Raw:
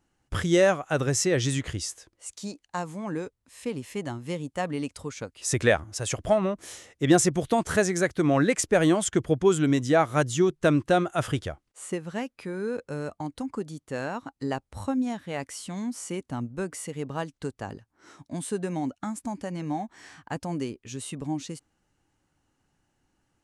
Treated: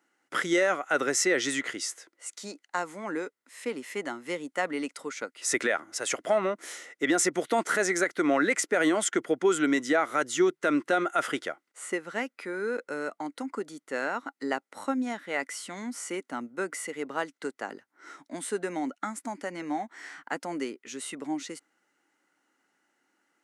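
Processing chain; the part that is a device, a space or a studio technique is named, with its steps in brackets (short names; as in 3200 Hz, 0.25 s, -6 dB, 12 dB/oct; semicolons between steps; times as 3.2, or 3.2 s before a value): laptop speaker (HPF 260 Hz 24 dB/oct; bell 1400 Hz +10 dB 0.22 oct; bell 2000 Hz +11 dB 0.23 oct; limiter -14.5 dBFS, peak gain reduction 9.5 dB)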